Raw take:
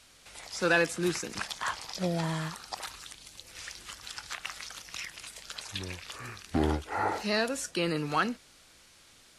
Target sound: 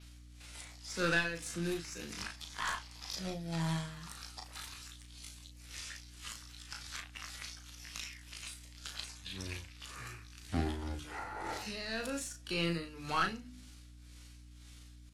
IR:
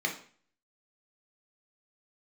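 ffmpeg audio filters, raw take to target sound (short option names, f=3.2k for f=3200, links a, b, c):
-filter_complex "[0:a]equalizer=f=570:t=o:w=2.5:g=-7,bandreject=f=50:t=h:w=6,bandreject=f=100:t=h:w=6,bandreject=f=150:t=h:w=6,bandreject=f=200:t=h:w=6,bandreject=f=250:t=h:w=6,bandreject=f=300:t=h:w=6,adynamicequalizer=threshold=0.00316:dfrequency=8400:dqfactor=1.7:tfrequency=8400:tqfactor=1.7:attack=5:release=100:ratio=0.375:range=1.5:mode=cutabove:tftype=bell,acontrast=37,atempo=0.62,aeval=exprs='0.266*(cos(1*acos(clip(val(0)/0.266,-1,1)))-cos(1*PI/2))+0.0237*(cos(4*acos(clip(val(0)/0.266,-1,1)))-cos(4*PI/2))':c=same,tremolo=f=1.9:d=0.72,aeval=exprs='val(0)+0.00398*(sin(2*PI*60*n/s)+sin(2*PI*2*60*n/s)/2+sin(2*PI*3*60*n/s)/3+sin(2*PI*4*60*n/s)/4+sin(2*PI*5*60*n/s)/5)':c=same,asplit=2[a][b];[b]adelay=36,volume=-6dB[c];[a][c]amix=inputs=2:normalize=0,volume=-6.5dB"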